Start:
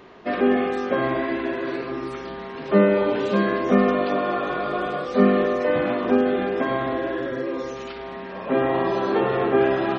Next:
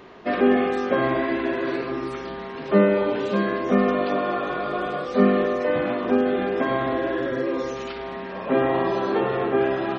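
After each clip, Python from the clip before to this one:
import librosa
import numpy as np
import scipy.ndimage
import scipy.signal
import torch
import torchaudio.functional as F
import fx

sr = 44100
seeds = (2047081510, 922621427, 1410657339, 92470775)

y = fx.rider(x, sr, range_db=4, speed_s=2.0)
y = F.gain(torch.from_numpy(y), -1.0).numpy()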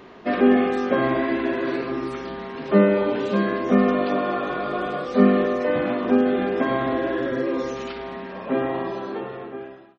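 y = fx.fade_out_tail(x, sr, length_s=2.14)
y = fx.peak_eq(y, sr, hz=240.0, db=3.5, octaves=0.56)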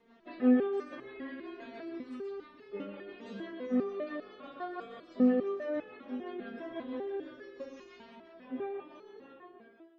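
y = fx.rotary(x, sr, hz=6.0)
y = y + 10.0 ** (-6.5 / 20.0) * np.pad(y, (int(126 * sr / 1000.0), 0))[:len(y)]
y = fx.resonator_held(y, sr, hz=5.0, low_hz=230.0, high_hz=430.0)
y = F.gain(torch.from_numpy(y), -2.5).numpy()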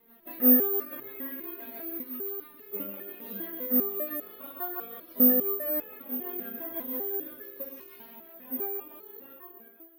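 y = (np.kron(scipy.signal.resample_poly(x, 1, 3), np.eye(3)[0]) * 3)[:len(x)]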